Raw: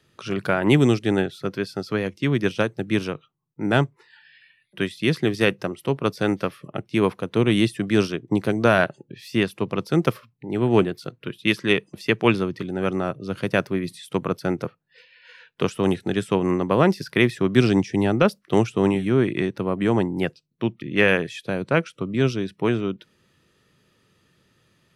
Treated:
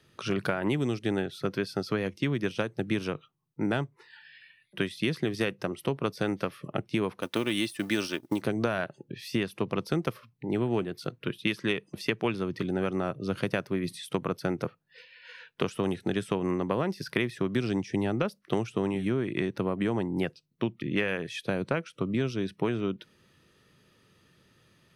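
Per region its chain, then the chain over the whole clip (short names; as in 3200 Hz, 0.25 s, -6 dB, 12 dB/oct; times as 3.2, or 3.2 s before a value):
7.21–8.42 G.711 law mismatch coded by A + tilt +2 dB/oct + comb 3.4 ms, depth 41%
whole clip: notch 7300 Hz, Q 11; compressor 10:1, threshold -24 dBFS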